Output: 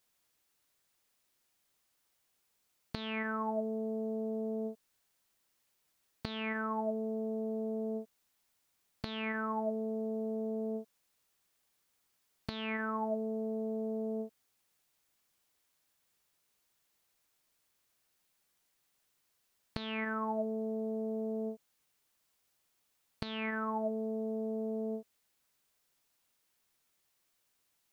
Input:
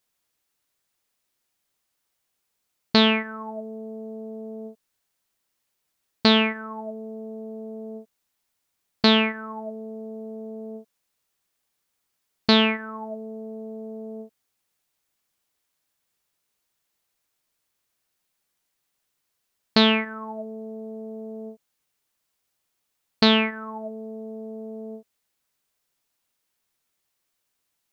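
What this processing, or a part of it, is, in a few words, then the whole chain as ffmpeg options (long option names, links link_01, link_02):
de-esser from a sidechain: -filter_complex "[0:a]asplit=2[link_01][link_02];[link_02]highpass=4900,apad=whole_len=1231352[link_03];[link_01][link_03]sidechaincompress=threshold=-47dB:ratio=12:attack=0.69:release=83"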